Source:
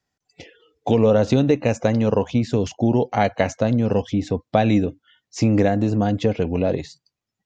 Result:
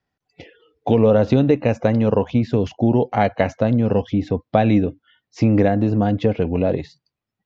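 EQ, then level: distance through air 190 m; +2.0 dB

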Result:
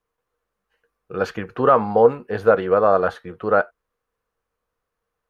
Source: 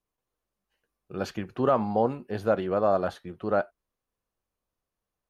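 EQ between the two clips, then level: bass shelf 210 Hz +4.5 dB; peaking EQ 470 Hz +13 dB 0.21 oct; peaking EQ 1.4 kHz +12 dB 1.7 oct; 0.0 dB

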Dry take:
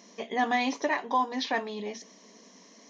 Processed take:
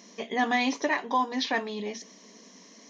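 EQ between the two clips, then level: peaking EQ 740 Hz -3.5 dB 1.5 oct; +3.0 dB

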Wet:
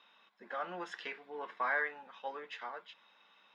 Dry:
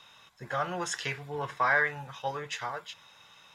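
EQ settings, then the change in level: brick-wall FIR high-pass 180 Hz; distance through air 370 m; treble shelf 3.3 kHz +10 dB; -7.0 dB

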